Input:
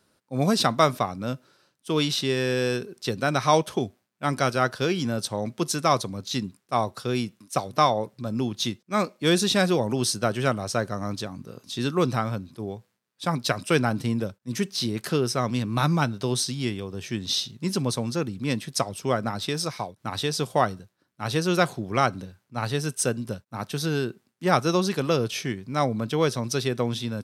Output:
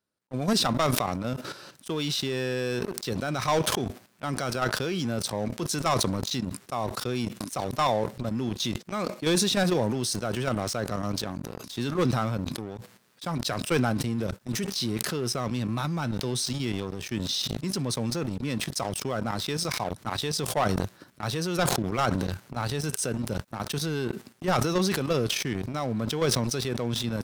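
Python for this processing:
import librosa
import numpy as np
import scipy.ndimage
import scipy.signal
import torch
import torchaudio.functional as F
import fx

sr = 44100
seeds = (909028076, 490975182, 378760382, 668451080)

y = fx.level_steps(x, sr, step_db=10)
y = fx.leveller(y, sr, passes=3)
y = fx.sustainer(y, sr, db_per_s=25.0)
y = y * librosa.db_to_amplitude(-10.0)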